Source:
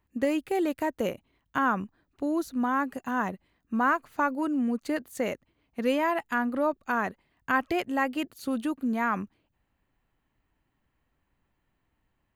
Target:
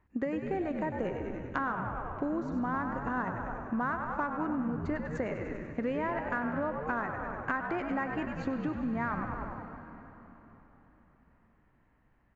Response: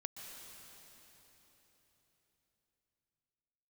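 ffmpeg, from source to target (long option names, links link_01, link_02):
-filter_complex "[0:a]highshelf=frequency=2500:width_type=q:width=1.5:gain=-7.5,asplit=8[link_01][link_02][link_03][link_04][link_05][link_06][link_07][link_08];[link_02]adelay=98,afreqshift=-72,volume=-8dB[link_09];[link_03]adelay=196,afreqshift=-144,volume=-12.6dB[link_10];[link_04]adelay=294,afreqshift=-216,volume=-17.2dB[link_11];[link_05]adelay=392,afreqshift=-288,volume=-21.7dB[link_12];[link_06]adelay=490,afreqshift=-360,volume=-26.3dB[link_13];[link_07]adelay=588,afreqshift=-432,volume=-30.9dB[link_14];[link_08]adelay=686,afreqshift=-504,volume=-35.5dB[link_15];[link_01][link_09][link_10][link_11][link_12][link_13][link_14][link_15]amix=inputs=8:normalize=0,acompressor=threshold=-36dB:ratio=5,asplit=2[link_16][link_17];[1:a]atrim=start_sample=2205,lowpass=4100[link_18];[link_17][link_18]afir=irnorm=-1:irlink=0,volume=2dB[link_19];[link_16][link_19]amix=inputs=2:normalize=0,aeval=exprs='0.106*(cos(1*acos(clip(val(0)/0.106,-1,1)))-cos(1*PI/2))+0.00075*(cos(7*acos(clip(val(0)/0.106,-1,1)))-cos(7*PI/2))':channel_layout=same,aresample=16000,aresample=44100"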